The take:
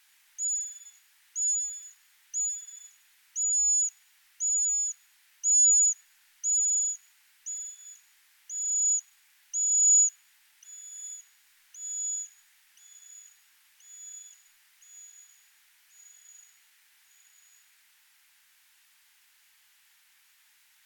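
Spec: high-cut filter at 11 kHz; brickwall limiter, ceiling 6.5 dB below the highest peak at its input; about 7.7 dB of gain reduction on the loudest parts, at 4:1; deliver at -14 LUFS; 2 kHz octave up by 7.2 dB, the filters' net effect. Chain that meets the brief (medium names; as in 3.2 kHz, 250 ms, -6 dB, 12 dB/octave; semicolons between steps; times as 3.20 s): low-pass 11 kHz; peaking EQ 2 kHz +8.5 dB; compression 4:1, threshold -28 dBFS; trim +20.5 dB; peak limiter -10 dBFS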